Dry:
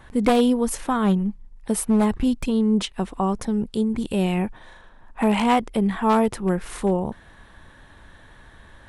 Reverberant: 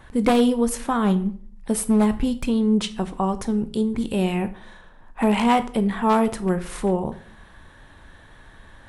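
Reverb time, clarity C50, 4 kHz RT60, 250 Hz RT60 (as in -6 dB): 0.50 s, 16.0 dB, 0.35 s, 0.65 s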